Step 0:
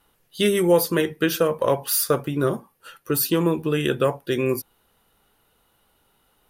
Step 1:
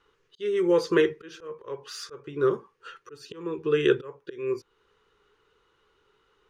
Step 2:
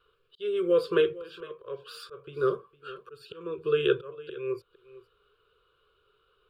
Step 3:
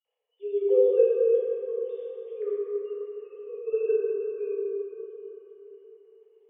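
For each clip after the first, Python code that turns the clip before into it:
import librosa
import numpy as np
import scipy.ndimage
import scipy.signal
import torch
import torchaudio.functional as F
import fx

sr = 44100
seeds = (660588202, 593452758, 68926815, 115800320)

y1 = fx.auto_swell(x, sr, attack_ms=551.0)
y1 = fx.curve_eq(y1, sr, hz=(130.0, 250.0, 420.0, 670.0, 1100.0, 2700.0, 4500.0, 6600.0, 12000.0), db=(0, -5, 14, -9, 8, 4, 1, 1, -28))
y1 = y1 * librosa.db_to_amplitude(-6.0)
y2 = fx.fixed_phaser(y1, sr, hz=1300.0, stages=8)
y2 = y2 + 10.0 ** (-18.5 / 20.0) * np.pad(y2, (int(457 * sr / 1000.0), 0))[:len(y2)]
y3 = fx.sine_speech(y2, sr)
y3 = fx.fixed_phaser(y3, sr, hz=580.0, stages=4)
y3 = fx.rev_plate(y3, sr, seeds[0], rt60_s=4.0, hf_ratio=0.4, predelay_ms=0, drr_db=-7.5)
y3 = y3 * librosa.db_to_amplitude(-4.5)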